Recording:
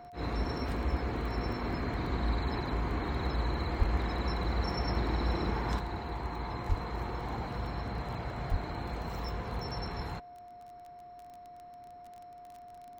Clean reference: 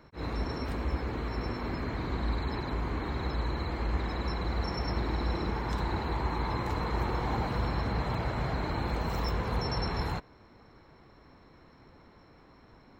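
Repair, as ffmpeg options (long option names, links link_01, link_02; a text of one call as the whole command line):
ffmpeg -i in.wav -filter_complex "[0:a]adeclick=threshold=4,bandreject=frequency=710:width=30,asplit=3[link_01][link_02][link_03];[link_01]afade=type=out:start_time=3.78:duration=0.02[link_04];[link_02]highpass=frequency=140:width=0.5412,highpass=frequency=140:width=1.3066,afade=type=in:start_time=3.78:duration=0.02,afade=type=out:start_time=3.9:duration=0.02[link_05];[link_03]afade=type=in:start_time=3.9:duration=0.02[link_06];[link_04][link_05][link_06]amix=inputs=3:normalize=0,asplit=3[link_07][link_08][link_09];[link_07]afade=type=out:start_time=6.68:duration=0.02[link_10];[link_08]highpass=frequency=140:width=0.5412,highpass=frequency=140:width=1.3066,afade=type=in:start_time=6.68:duration=0.02,afade=type=out:start_time=6.8:duration=0.02[link_11];[link_09]afade=type=in:start_time=6.8:duration=0.02[link_12];[link_10][link_11][link_12]amix=inputs=3:normalize=0,asplit=3[link_13][link_14][link_15];[link_13]afade=type=out:start_time=8.5:duration=0.02[link_16];[link_14]highpass=frequency=140:width=0.5412,highpass=frequency=140:width=1.3066,afade=type=in:start_time=8.5:duration=0.02,afade=type=out:start_time=8.62:duration=0.02[link_17];[link_15]afade=type=in:start_time=8.62:duration=0.02[link_18];[link_16][link_17][link_18]amix=inputs=3:normalize=0,asetnsamples=nb_out_samples=441:pad=0,asendcmd='5.79 volume volume 6dB',volume=0dB" out.wav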